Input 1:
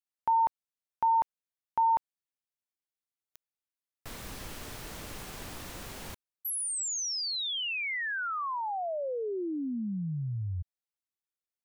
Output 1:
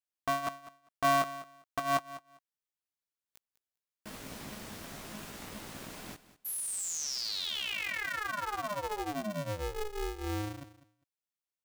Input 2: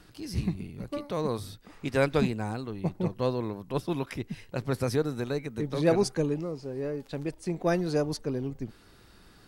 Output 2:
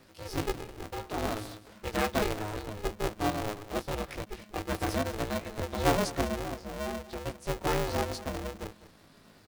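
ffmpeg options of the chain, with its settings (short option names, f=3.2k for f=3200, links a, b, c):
-af "flanger=delay=16.5:depth=2.5:speed=0.38,aecho=1:1:200|400:0.158|0.0254,aeval=exprs='val(0)*sgn(sin(2*PI*210*n/s))':c=same"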